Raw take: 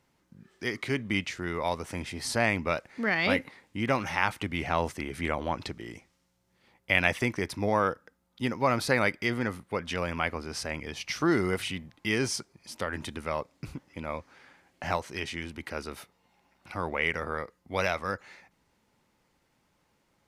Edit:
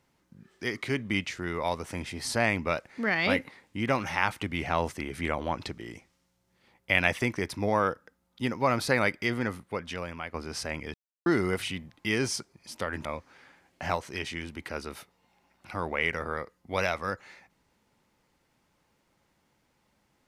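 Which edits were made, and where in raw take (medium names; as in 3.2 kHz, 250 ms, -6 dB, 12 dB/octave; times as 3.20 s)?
9.53–10.34 s: fade out linear, to -11 dB
10.94–11.26 s: mute
13.05–14.06 s: delete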